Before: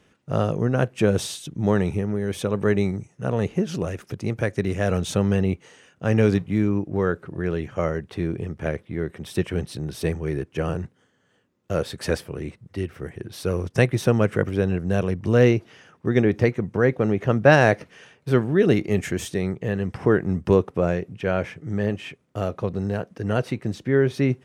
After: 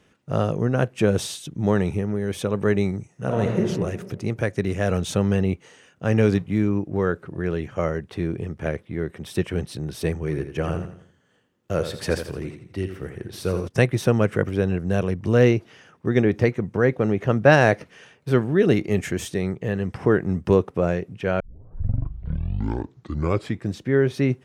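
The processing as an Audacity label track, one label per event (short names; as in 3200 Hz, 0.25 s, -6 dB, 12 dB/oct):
3.100000	3.610000	reverb throw, RT60 1.5 s, DRR 1 dB
10.130000	13.680000	feedback echo 84 ms, feedback 39%, level -9.5 dB
21.400000	21.400000	tape start 2.39 s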